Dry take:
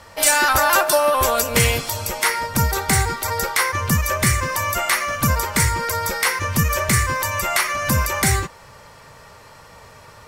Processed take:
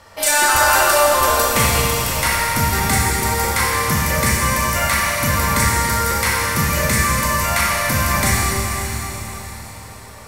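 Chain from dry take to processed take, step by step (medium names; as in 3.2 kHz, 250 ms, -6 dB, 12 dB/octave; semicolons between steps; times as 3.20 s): echo that smears into a reverb 562 ms, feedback 41%, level -11.5 dB; Schroeder reverb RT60 3.2 s, combs from 28 ms, DRR -3.5 dB; trim -2.5 dB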